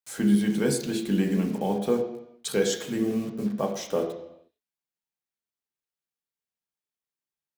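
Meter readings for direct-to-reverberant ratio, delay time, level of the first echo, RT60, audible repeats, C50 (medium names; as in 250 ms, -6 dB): 1.5 dB, no echo, no echo, 0.85 s, no echo, 8.5 dB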